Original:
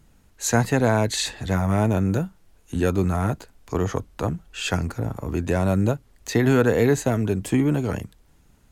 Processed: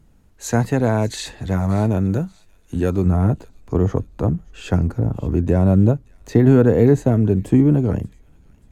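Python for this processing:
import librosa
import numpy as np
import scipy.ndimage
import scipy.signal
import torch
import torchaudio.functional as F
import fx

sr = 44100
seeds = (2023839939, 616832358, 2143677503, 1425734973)

y = fx.tilt_shelf(x, sr, db=fx.steps((0.0, 4.0), (3.05, 9.0)), hz=890.0)
y = fx.echo_wet_highpass(y, sr, ms=582, feedback_pct=38, hz=2600.0, wet_db=-18.5)
y = y * 10.0 ** (-1.0 / 20.0)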